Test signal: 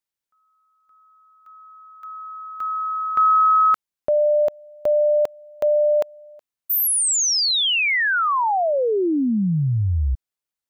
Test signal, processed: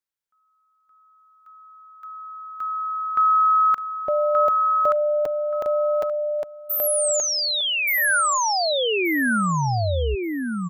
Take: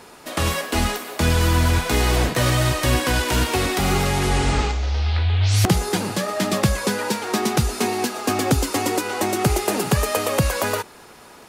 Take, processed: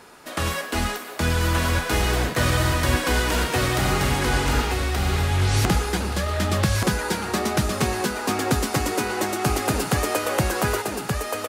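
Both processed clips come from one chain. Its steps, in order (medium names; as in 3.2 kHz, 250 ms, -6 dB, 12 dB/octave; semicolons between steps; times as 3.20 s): peaking EQ 1.5 kHz +4 dB 0.66 oct; on a send: feedback delay 1177 ms, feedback 21%, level -3 dB; on the sum: trim -4 dB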